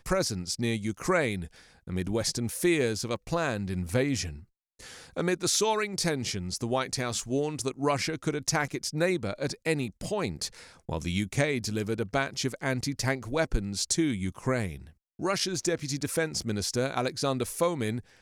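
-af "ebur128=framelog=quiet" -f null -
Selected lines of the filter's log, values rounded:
Integrated loudness:
  I:         -29.6 LUFS
  Threshold: -39.8 LUFS
Loudness range:
  LRA:         1.6 LU
  Threshold: -49.9 LUFS
  LRA low:   -30.7 LUFS
  LRA high:  -29.2 LUFS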